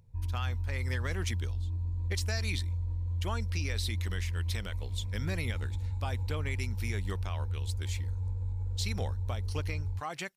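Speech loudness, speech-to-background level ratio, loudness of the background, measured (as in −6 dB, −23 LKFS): −39.5 LKFS, −4.0 dB, −35.5 LKFS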